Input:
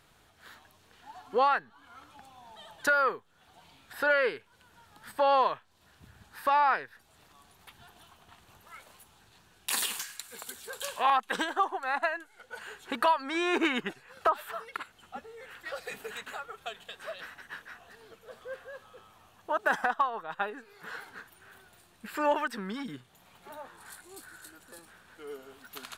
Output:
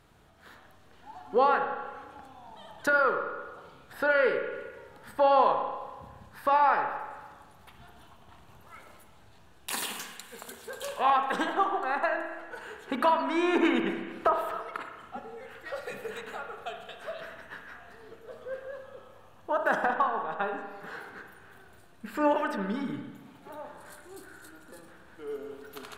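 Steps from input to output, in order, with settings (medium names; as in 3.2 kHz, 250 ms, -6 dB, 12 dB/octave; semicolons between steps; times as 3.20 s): tilt shelf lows +4.5 dB, about 1.1 kHz; spring tank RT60 1.4 s, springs 30/57 ms, chirp 75 ms, DRR 4 dB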